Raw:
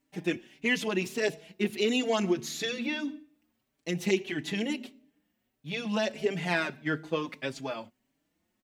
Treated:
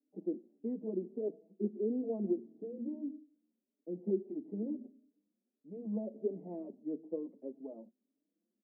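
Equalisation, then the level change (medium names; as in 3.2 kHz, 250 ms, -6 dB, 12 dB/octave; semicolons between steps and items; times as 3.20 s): Chebyshev high-pass 200 Hz, order 5; inverse Chebyshev low-pass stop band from 1.4 kHz, stop band 50 dB; distance through air 380 m; -4.5 dB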